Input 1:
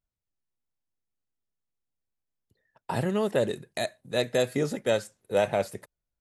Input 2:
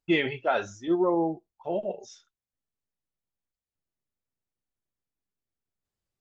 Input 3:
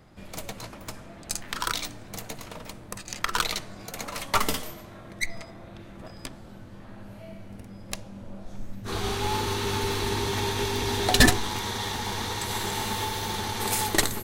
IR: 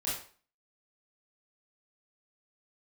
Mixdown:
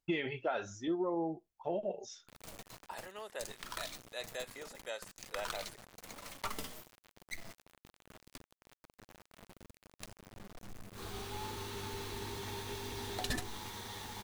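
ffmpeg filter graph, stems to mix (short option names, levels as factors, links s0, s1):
-filter_complex "[0:a]highpass=790,volume=0.266[s0];[1:a]volume=0.891[s1];[2:a]acrusher=bits=5:mix=0:aa=0.000001,adelay=2100,volume=0.178[s2];[s0][s1][s2]amix=inputs=3:normalize=0,acompressor=threshold=0.0224:ratio=4"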